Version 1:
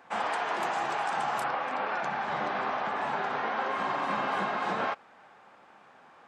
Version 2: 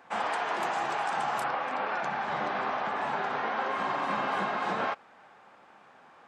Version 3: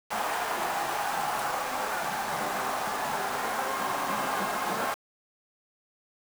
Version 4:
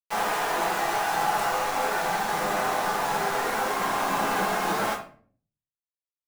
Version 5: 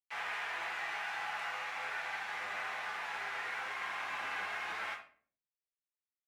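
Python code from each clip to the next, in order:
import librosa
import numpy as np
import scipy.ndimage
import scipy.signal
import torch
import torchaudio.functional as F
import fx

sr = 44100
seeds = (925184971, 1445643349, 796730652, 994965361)

y1 = x
y2 = fx.quant_dither(y1, sr, seeds[0], bits=6, dither='none')
y3 = fx.room_shoebox(y2, sr, seeds[1], volume_m3=39.0, walls='mixed', distance_m=0.7)
y4 = fx.octave_divider(y3, sr, octaves=2, level_db=4.0)
y4 = fx.bandpass_q(y4, sr, hz=2200.0, q=2.1)
y4 = y4 * librosa.db_to_amplitude(-4.0)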